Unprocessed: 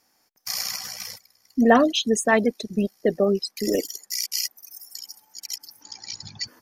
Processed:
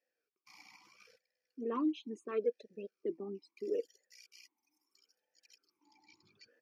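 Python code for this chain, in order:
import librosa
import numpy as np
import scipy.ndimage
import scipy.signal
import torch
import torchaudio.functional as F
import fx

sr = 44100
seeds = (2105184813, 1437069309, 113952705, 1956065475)

y = fx.vowel_sweep(x, sr, vowels='e-u', hz=0.75)
y = F.gain(torch.from_numpy(y), -6.5).numpy()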